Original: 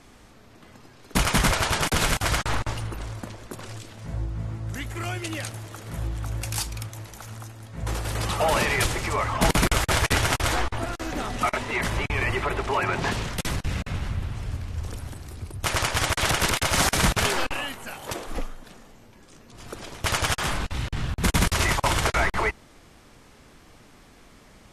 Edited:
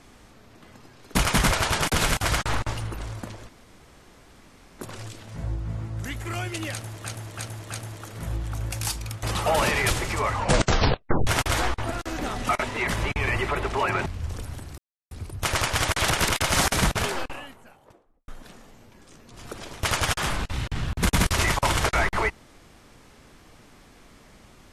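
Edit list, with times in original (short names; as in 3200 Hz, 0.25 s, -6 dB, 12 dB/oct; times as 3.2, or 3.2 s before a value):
3.49 insert room tone 1.30 s
5.42–5.75 loop, 4 plays
6.94–8.17 cut
9.25 tape stop 0.96 s
13–14.6 cut
15.32 insert silence 0.33 s
16.75–18.49 studio fade out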